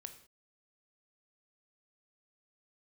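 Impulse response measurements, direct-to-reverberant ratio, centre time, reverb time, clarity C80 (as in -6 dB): 7.5 dB, 10 ms, not exponential, 14.0 dB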